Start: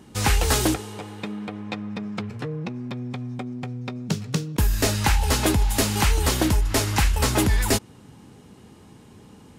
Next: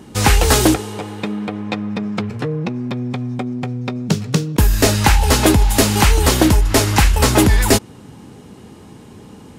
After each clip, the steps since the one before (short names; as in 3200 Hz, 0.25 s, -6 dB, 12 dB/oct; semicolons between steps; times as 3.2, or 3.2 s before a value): bell 400 Hz +2.5 dB 2.4 oct; gain +7 dB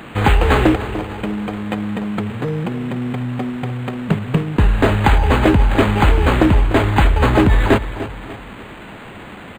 requantised 6-bit, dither triangular; feedback echo 0.297 s, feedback 42%, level -13 dB; decimation joined by straight lines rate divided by 8×